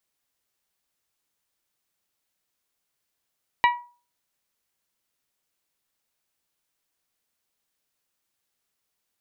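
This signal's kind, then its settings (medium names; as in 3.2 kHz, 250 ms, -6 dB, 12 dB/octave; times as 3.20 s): glass hit bell, lowest mode 966 Hz, decay 0.37 s, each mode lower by 4.5 dB, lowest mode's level -13 dB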